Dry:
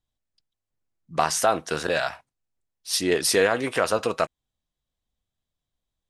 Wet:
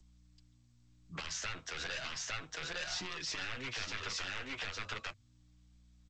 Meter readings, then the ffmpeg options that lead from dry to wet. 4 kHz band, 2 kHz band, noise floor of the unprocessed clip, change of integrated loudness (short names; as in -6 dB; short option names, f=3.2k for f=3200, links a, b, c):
-8.5 dB, -10.0 dB, under -85 dBFS, -15.5 dB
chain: -filter_complex "[0:a]aemphasis=mode=reproduction:type=50kf,aeval=exprs='0.501*(cos(1*acos(clip(val(0)/0.501,-1,1)))-cos(1*PI/2))+0.2*(cos(7*acos(clip(val(0)/0.501,-1,1)))-cos(7*PI/2))':c=same,bandreject=f=50:t=h:w=6,bandreject=f=100:t=h:w=6,aecho=1:1:858:0.668,aeval=exprs='val(0)+0.002*(sin(2*PI*60*n/s)+sin(2*PI*2*60*n/s)/2+sin(2*PI*3*60*n/s)/3+sin(2*PI*4*60*n/s)/4+sin(2*PI*5*60*n/s)/5)':c=same,acrossover=split=210|1300|2800[a][b][c][d];[b]acompressor=threshold=-34dB:ratio=5[e];[a][e][c][d]amix=inputs=4:normalize=0,equalizer=f=200:w=0.46:g=-9,acrossover=split=180|450|1400[f][g][h][i];[f]acompressor=threshold=-43dB:ratio=4[j];[g]acompressor=threshold=-52dB:ratio=4[k];[h]acompressor=threshold=-46dB:ratio=4[l];[i]acompressor=threshold=-34dB:ratio=4[m];[j][k][l][m]amix=inputs=4:normalize=0,alimiter=level_in=2.5dB:limit=-24dB:level=0:latency=1:release=39,volume=-2.5dB,flanger=delay=5.5:depth=5.6:regen=-3:speed=0.34:shape=sinusoidal,volume=1.5dB" -ar 16000 -c:a g722